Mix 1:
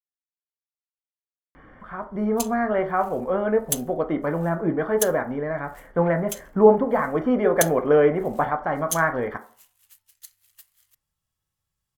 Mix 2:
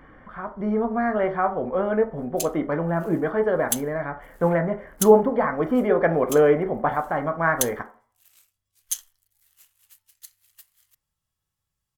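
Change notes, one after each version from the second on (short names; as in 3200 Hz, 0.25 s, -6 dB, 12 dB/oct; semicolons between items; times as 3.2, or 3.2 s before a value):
speech: entry -1.55 s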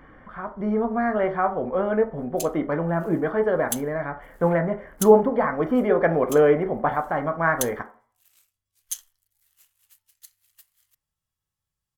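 background -3.5 dB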